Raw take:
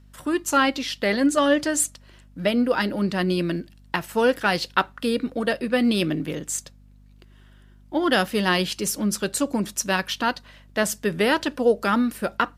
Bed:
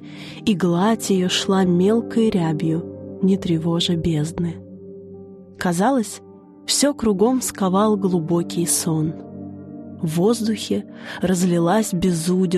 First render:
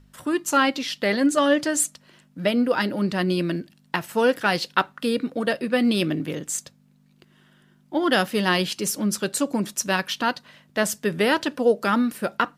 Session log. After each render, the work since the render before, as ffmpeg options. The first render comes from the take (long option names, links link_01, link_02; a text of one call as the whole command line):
ffmpeg -i in.wav -af "bandreject=frequency=50:width_type=h:width=4,bandreject=frequency=100:width_type=h:width=4" out.wav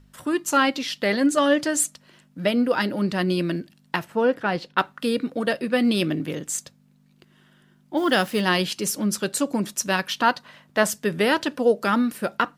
ffmpeg -i in.wav -filter_complex "[0:a]asplit=3[link_01][link_02][link_03];[link_01]afade=type=out:start_time=4.03:duration=0.02[link_04];[link_02]lowpass=frequency=1200:poles=1,afade=type=in:start_time=4.03:duration=0.02,afade=type=out:start_time=4.77:duration=0.02[link_05];[link_03]afade=type=in:start_time=4.77:duration=0.02[link_06];[link_04][link_05][link_06]amix=inputs=3:normalize=0,asplit=3[link_07][link_08][link_09];[link_07]afade=type=out:start_time=7.96:duration=0.02[link_10];[link_08]acrusher=bits=6:mix=0:aa=0.5,afade=type=in:start_time=7.96:duration=0.02,afade=type=out:start_time=8.4:duration=0.02[link_11];[link_09]afade=type=in:start_time=8.4:duration=0.02[link_12];[link_10][link_11][link_12]amix=inputs=3:normalize=0,asettb=1/sr,asplit=3[link_13][link_14][link_15];[link_13]atrim=end=10.204[link_16];[link_14]atrim=start=10.2:end=10.9,asetpts=PTS-STARTPTS,afade=type=in:duration=0.004:curve=qsin,afade=type=out:start_time=0.696:duration=0.004:curve=qsin,equalizer=frequency=1000:width_type=o:width=1.6:gain=5.5[link_17];[link_15]atrim=start=10.896[link_18];[link_16][link_17]acrossfade=duration=0.004:curve1=hsin:curve2=qsin[link_19];[link_19][link_18]acrossfade=duration=0.004:curve1=qsin:curve2=hsin" out.wav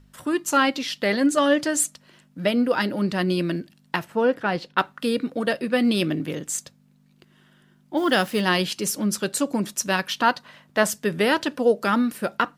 ffmpeg -i in.wav -af anull out.wav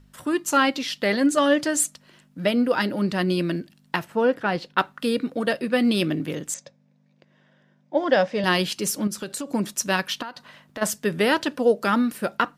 ffmpeg -i in.wav -filter_complex "[0:a]asettb=1/sr,asplit=3[link_01][link_02][link_03];[link_01]atrim=end=6.544[link_04];[link_02]atrim=start=6.54:end=8.44,asetpts=PTS-STARTPTS,afade=type=in:duration=0.004:curve=qsin,afade=type=out:start_time=1.896:duration=0.004:curve=qsin,highpass=150,equalizer=frequency=230:width_type=q:width=4:gain=-4,equalizer=frequency=370:width_type=q:width=4:gain=-8,equalizer=frequency=560:width_type=q:width=4:gain=10,equalizer=frequency=1300:width_type=q:width=4:gain=-8,equalizer=frequency=3000:width_type=q:width=4:gain=-8,equalizer=frequency=4300:width_type=q:width=4:gain=-8,lowpass=frequency=5400:width=0.5412,lowpass=frequency=5400:width=1.3066[link_05];[link_03]atrim=start=8.436[link_06];[link_04][link_05]acrossfade=duration=0.004:curve1=hsin:curve2=qsin[link_07];[link_07][link_06]acrossfade=duration=0.004:curve1=qsin:curve2=hsin,asettb=1/sr,asplit=3[link_08][link_09][link_10];[link_08]atrim=end=9.074[link_11];[link_09]atrim=start=9.07:end=9.54,asetpts=PTS-STARTPTS,afade=type=in:duration=0.004:curve=qsin,afade=type=out:start_time=0.466:duration=0.004:curve=qsin,acompressor=threshold=-27dB:ratio=6:attack=3.2:release=140:knee=1:detection=peak[link_12];[link_10]atrim=start=9.536[link_13];[link_11][link_12]acrossfade=duration=0.004:curve1=hsin:curve2=qsin[link_14];[link_14][link_13]acrossfade=duration=0.004:curve1=qsin:curve2=hsin,asplit=3[link_15][link_16][link_17];[link_15]afade=type=out:start_time=10.21:duration=0.02[link_18];[link_16]acompressor=threshold=-30dB:ratio=12:attack=3.2:release=140:knee=1:detection=peak,afade=type=in:start_time=10.21:duration=0.02,afade=type=out:start_time=10.81:duration=0.02[link_19];[link_17]afade=type=in:start_time=10.81:duration=0.02[link_20];[link_18][link_19][link_20]amix=inputs=3:normalize=0" out.wav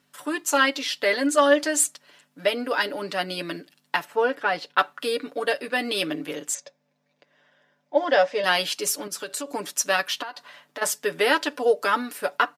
ffmpeg -i in.wav -af "highpass=440,aecho=1:1:6.9:0.68" out.wav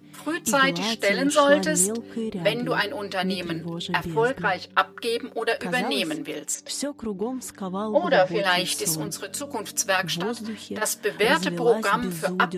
ffmpeg -i in.wav -i bed.wav -filter_complex "[1:a]volume=-12dB[link_01];[0:a][link_01]amix=inputs=2:normalize=0" out.wav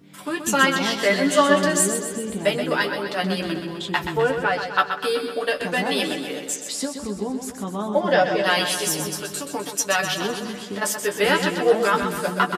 ffmpeg -i in.wav -filter_complex "[0:a]asplit=2[link_01][link_02];[link_02]adelay=15,volume=-6.5dB[link_03];[link_01][link_03]amix=inputs=2:normalize=0,aecho=1:1:127|254|381|508|635|762|889|1016:0.398|0.239|0.143|0.086|0.0516|0.031|0.0186|0.0111" out.wav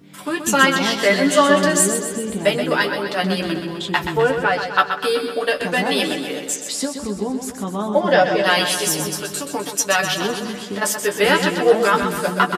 ffmpeg -i in.wav -af "volume=3.5dB,alimiter=limit=-1dB:level=0:latency=1" out.wav